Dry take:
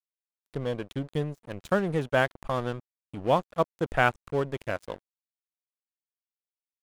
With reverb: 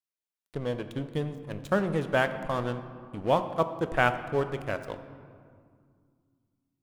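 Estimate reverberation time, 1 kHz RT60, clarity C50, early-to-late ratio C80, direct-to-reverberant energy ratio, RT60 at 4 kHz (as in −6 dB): 2.2 s, 2.1 s, 11.0 dB, 12.0 dB, 9.0 dB, 1.2 s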